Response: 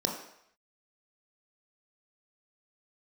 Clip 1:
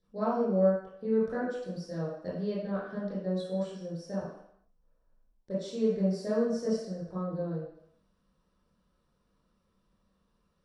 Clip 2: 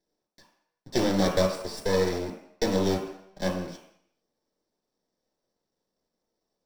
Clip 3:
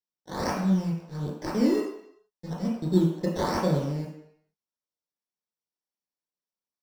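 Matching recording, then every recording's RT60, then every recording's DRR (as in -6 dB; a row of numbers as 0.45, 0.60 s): 2; 0.70, 0.70, 0.70 s; -10.5, 0.0, -4.5 dB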